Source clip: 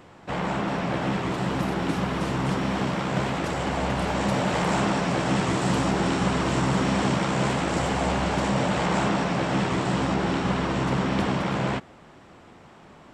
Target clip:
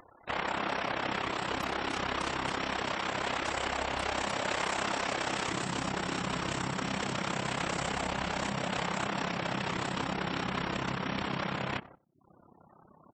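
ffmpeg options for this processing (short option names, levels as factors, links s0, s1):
-filter_complex "[0:a]agate=range=0.141:threshold=0.00562:ratio=16:detection=peak,asetnsamples=n=441:p=0,asendcmd='5.51 equalizer g 3.5',equalizer=f=160:w=1.9:g=-11.5,alimiter=limit=0.0841:level=0:latency=1:release=30,tremolo=f=33:d=0.71,acompressor=mode=upward:threshold=0.00794:ratio=2.5,afftfilt=real='re*gte(hypot(re,im),0.00316)':imag='im*gte(hypot(re,im),0.00316)':win_size=1024:overlap=0.75,tiltshelf=f=750:g=-5,asplit=2[s0][s1];[s1]adelay=93,lowpass=f=950:p=1,volume=0.133,asplit=2[s2][s3];[s3]adelay=93,lowpass=f=950:p=1,volume=0.27[s4];[s0][s2][s4]amix=inputs=3:normalize=0"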